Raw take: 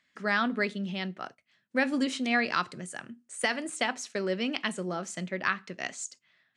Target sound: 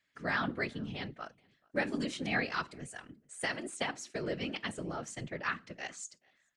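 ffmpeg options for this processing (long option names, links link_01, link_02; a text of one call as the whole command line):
ffmpeg -i in.wav -filter_complex "[0:a]afftfilt=real='hypot(re,im)*cos(2*PI*random(0))':imag='hypot(re,im)*sin(2*PI*random(1))':win_size=512:overlap=0.75,asplit=2[link_01][link_02];[link_02]adelay=431.5,volume=-28dB,highshelf=frequency=4000:gain=-9.71[link_03];[link_01][link_03]amix=inputs=2:normalize=0" out.wav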